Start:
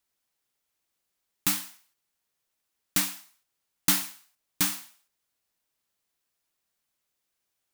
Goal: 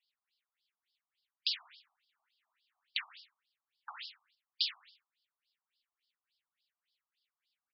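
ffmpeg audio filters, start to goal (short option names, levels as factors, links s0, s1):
-filter_complex "[0:a]aderivative,asplit=2[s0][s1];[s1]acompressor=threshold=0.0158:ratio=6,volume=1[s2];[s0][s2]amix=inputs=2:normalize=0,asettb=1/sr,asplit=3[s3][s4][s5];[s3]atrim=end=1.594[s6];[s4]atrim=start=1.59:end=2.98,asetpts=PTS-STARTPTS,afade=t=in:d=0.004:c=qsin,afade=t=out:st=1.386:d=0.004:c=qsin,acrusher=bits=9:dc=4:mix=0:aa=0.000001[s7];[s5]atrim=start=2.976[s8];[s6][s7]acrossfade=d=0.004:c1=hsin:c2=qsin[s9];[s9][s8]acrossfade=d=0.004:c1=qsin:c2=hsin,aresample=11025,aresample=44100,afftfilt=real='re*between(b*sr/1024,870*pow(4100/870,0.5+0.5*sin(2*PI*3.5*pts/sr))/1.41,870*pow(4100/870,0.5+0.5*sin(2*PI*3.5*pts/sr))*1.41)':imag='im*between(b*sr/1024,870*pow(4100/870,0.5+0.5*sin(2*PI*3.5*pts/sr))/1.41,870*pow(4100/870,0.5+0.5*sin(2*PI*3.5*pts/sr))*1.41)':win_size=1024:overlap=0.75,volume=2.11"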